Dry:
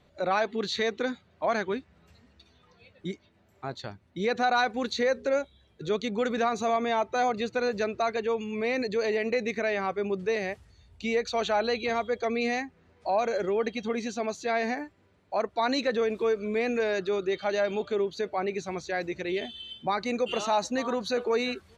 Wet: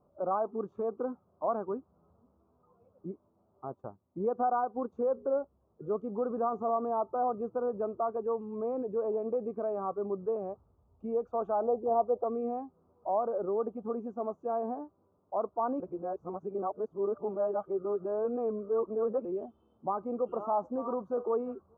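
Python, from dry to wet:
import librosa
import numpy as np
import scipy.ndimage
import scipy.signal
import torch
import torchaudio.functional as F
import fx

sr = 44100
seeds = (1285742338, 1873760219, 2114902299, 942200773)

y = fx.transient(x, sr, attack_db=3, sustain_db=-6, at=(3.7, 4.93))
y = fx.lowpass_res(y, sr, hz=770.0, q=2.4, at=(11.62, 12.24))
y = fx.edit(y, sr, fx.reverse_span(start_s=15.8, length_s=3.45), tone=tone)
y = scipy.signal.sosfilt(scipy.signal.ellip(4, 1.0, 40, 1200.0, 'lowpass', fs=sr, output='sos'), y)
y = fx.low_shelf(y, sr, hz=120.0, db=-10.0)
y = F.gain(torch.from_numpy(y), -3.0).numpy()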